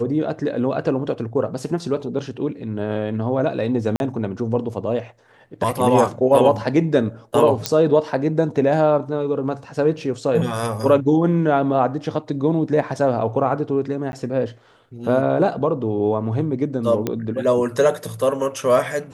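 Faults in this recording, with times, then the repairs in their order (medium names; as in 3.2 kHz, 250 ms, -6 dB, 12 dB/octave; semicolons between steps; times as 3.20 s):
3.96–4.00 s: dropout 41 ms
7.66 s: pop -4 dBFS
14.12–14.13 s: dropout 11 ms
17.07 s: pop -9 dBFS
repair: de-click; interpolate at 3.96 s, 41 ms; interpolate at 14.12 s, 11 ms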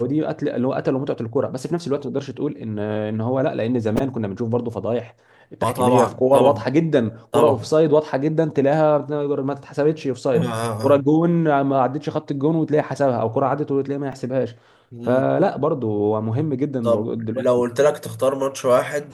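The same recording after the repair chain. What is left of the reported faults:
nothing left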